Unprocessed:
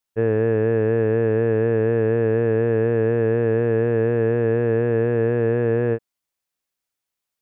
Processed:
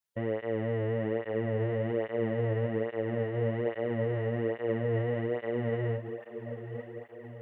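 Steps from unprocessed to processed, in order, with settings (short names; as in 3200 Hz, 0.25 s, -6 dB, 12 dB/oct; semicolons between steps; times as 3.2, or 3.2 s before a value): limiter -17.5 dBFS, peak gain reduction 7.5 dB; diffused feedback echo 0.929 s, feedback 60%, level -10.5 dB; formant shift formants +2 st; tape flanging out of phase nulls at 1.2 Hz, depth 4.2 ms; gain -2 dB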